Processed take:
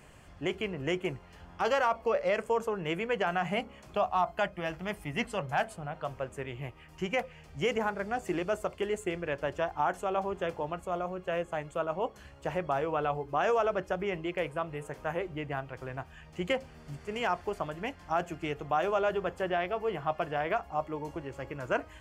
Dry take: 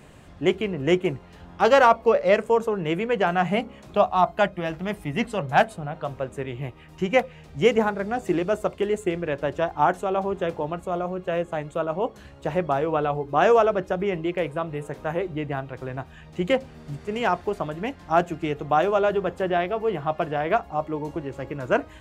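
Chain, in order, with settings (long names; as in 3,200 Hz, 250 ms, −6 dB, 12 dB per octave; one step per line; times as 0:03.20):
brickwall limiter −13 dBFS, peak gain reduction 7.5 dB
parametric band 240 Hz −6.5 dB 2.6 octaves
notch filter 3,800 Hz, Q 6.5
level −3 dB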